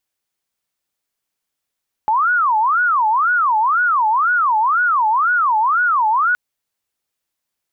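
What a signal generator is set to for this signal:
siren wail 854–1,470 Hz 2 per second sine −12.5 dBFS 4.27 s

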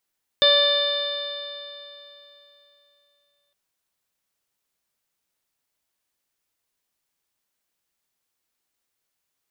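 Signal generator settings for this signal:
stiff-string partials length 3.11 s, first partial 574 Hz, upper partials −10.5/−7/−17/−14/4/−11/−14 dB, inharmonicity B 0.0023, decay 3.15 s, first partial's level −18 dB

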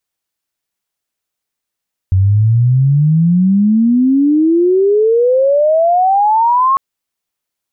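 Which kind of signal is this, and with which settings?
glide logarithmic 92 Hz → 1,100 Hz −7 dBFS → −8 dBFS 4.65 s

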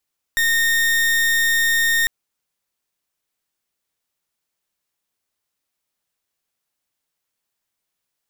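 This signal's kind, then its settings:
pulse wave 1,840 Hz, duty 38% −17.5 dBFS 1.70 s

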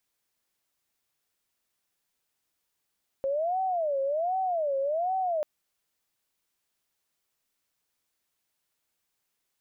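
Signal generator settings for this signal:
siren wail 541–761 Hz 1.3 per second sine −25 dBFS 2.19 s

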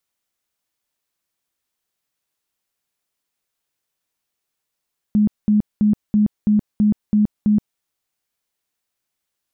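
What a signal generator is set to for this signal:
tone bursts 210 Hz, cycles 26, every 0.33 s, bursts 8, −11.5 dBFS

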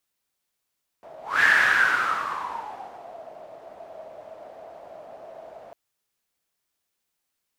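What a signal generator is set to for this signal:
pass-by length 4.70 s, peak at 0:00.40, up 0.24 s, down 1.94 s, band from 650 Hz, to 1,700 Hz, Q 8.6, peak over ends 25 dB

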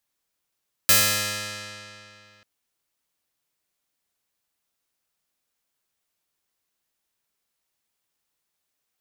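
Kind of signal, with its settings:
Karplus-Strong string G#2, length 1.54 s, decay 2.71 s, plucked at 0.27, bright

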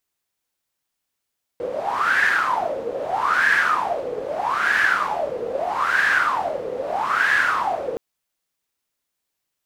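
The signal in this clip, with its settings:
wind from filtered noise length 6.37 s, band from 480 Hz, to 1,700 Hz, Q 11, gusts 5, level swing 10 dB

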